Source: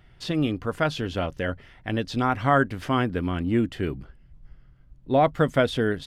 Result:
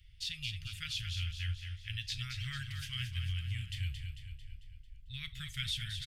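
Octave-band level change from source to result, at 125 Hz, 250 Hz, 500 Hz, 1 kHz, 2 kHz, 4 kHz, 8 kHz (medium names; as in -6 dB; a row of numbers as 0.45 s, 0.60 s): -9.0 dB, -30.5 dB, under -40 dB, -33.5 dB, -13.0 dB, -1.0 dB, no reading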